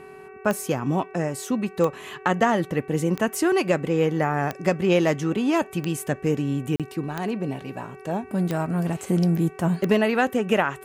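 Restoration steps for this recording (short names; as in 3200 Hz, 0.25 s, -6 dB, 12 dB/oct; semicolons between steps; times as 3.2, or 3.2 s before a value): de-click; de-hum 379.9 Hz, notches 7; notch 420 Hz, Q 30; interpolate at 6.76, 37 ms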